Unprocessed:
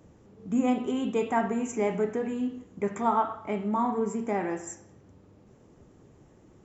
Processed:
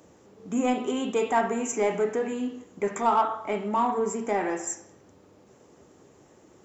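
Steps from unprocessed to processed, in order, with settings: high-pass 59 Hz; tone controls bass -11 dB, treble +4 dB; de-hum 110.2 Hz, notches 38; in parallel at -4 dB: saturation -26.5 dBFS, distortion -11 dB; on the sum: trim +1 dB

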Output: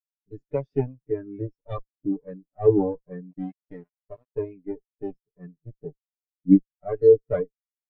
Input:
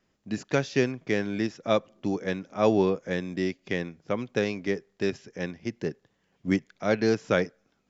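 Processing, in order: comb filter that takes the minimum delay 6.8 ms; 3.31–4.38 s: small samples zeroed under -31.5 dBFS; spectral contrast expander 2.5:1; trim +7.5 dB

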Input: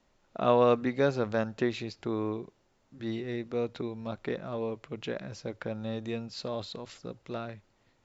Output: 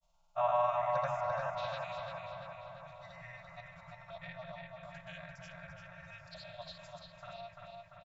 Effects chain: spectrogram pixelated in time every 100 ms; comb 4.4 ms, depth 89%; FFT band-reject 180–530 Hz; touch-sensitive phaser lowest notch 290 Hz, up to 4.4 kHz, full sweep at -32 dBFS; granulator, pitch spread up and down by 0 st; on a send: filtered feedback delay 343 ms, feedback 67%, low-pass 4.2 kHz, level -3 dB; on the sum: trim -2.5 dB

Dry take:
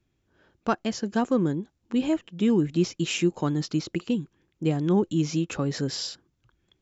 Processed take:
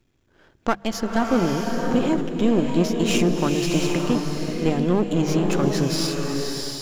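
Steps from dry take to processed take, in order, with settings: partial rectifier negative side -12 dB; hum notches 50/100/150/200 Hz; in parallel at +1 dB: compression, threshold -32 dBFS, peak gain reduction 13.5 dB; on the sum: swelling reverb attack 710 ms, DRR 1 dB; trim +3 dB

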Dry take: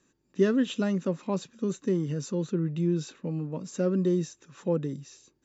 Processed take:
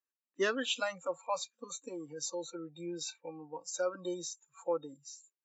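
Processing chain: spectral noise reduction 27 dB; high-pass 790 Hz 12 dB/octave; tape noise reduction on one side only decoder only; trim +4.5 dB

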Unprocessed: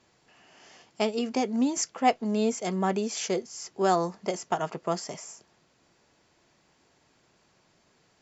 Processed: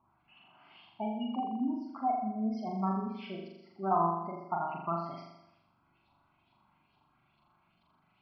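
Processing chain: knee-point frequency compression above 3.7 kHz 1.5:1; spectral gate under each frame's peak -15 dB strong; LFO low-pass saw up 2.3 Hz 940–4000 Hz; static phaser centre 1.8 kHz, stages 6; on a send: flutter echo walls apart 7.1 m, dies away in 0.9 s; on the sum: trim -5.5 dB

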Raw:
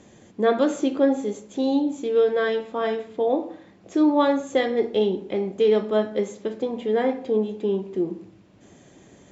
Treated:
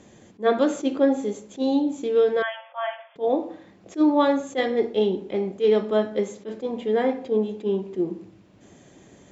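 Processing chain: 2.42–3.16 s: brick-wall FIR band-pass 520–3500 Hz; attacks held to a fixed rise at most 380 dB/s

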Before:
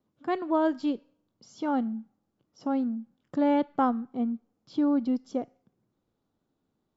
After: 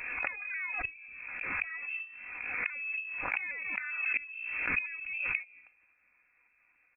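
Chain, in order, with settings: sawtooth pitch modulation +5.5 st, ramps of 270 ms; high-pass 370 Hz 24 dB/octave; comb 4.2 ms, depth 39%; in parallel at -0.5 dB: gain riding within 3 dB 0.5 s; on the sum: hum notches 60/120/180/240/300/360/420/480/540/600 Hz; inverted gate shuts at -26 dBFS, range -24 dB; frequency inversion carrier 2.9 kHz; swell ahead of each attack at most 34 dB/s; trim +7.5 dB

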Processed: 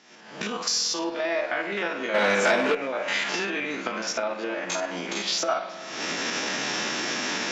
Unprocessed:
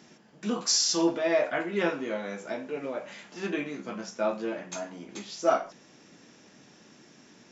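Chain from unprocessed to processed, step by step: spectrogram pixelated in time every 50 ms; recorder AGC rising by 61 dB/s; on a send at -11 dB: reverberation RT60 5.1 s, pre-delay 50 ms; 2.14–2.75 s: on the sum: waveshaping leveller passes 3; high-pass 1.2 kHz 6 dB/octave; distance through air 91 m; Chebyshev shaper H 8 -44 dB, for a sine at -14 dBFS; trim +5.5 dB

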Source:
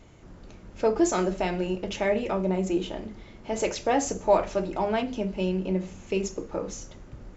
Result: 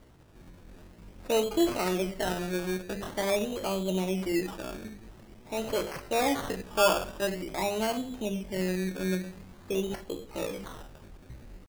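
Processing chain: tempo 0.63×; decimation with a swept rate 17×, swing 60% 0.47 Hz; trim -3.5 dB

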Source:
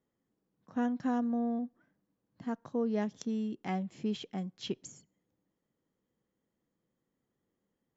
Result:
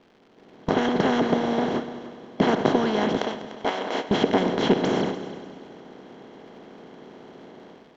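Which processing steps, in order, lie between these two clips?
spectral levelling over time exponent 0.2; 3.18–4.11 s: high-pass 480 Hz 12 dB/octave; gate with hold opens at -23 dBFS; level rider gain up to 15 dB; harmonic-percussive split harmonic -15 dB; in parallel at -5 dB: hard clipper -21.5 dBFS, distortion -8 dB; on the sum: crackle 210 per s -38 dBFS; distance through air 230 m; multi-head delay 99 ms, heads all three, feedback 46%, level -17.5 dB

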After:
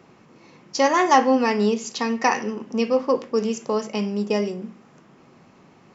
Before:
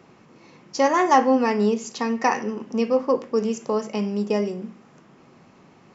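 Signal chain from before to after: dynamic bell 3.8 kHz, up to +6 dB, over -42 dBFS, Q 0.75

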